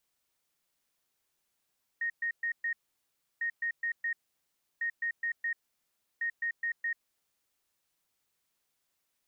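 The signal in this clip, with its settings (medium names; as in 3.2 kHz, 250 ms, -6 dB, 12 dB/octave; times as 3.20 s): beep pattern sine 1.86 kHz, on 0.09 s, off 0.12 s, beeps 4, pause 0.68 s, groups 4, -29 dBFS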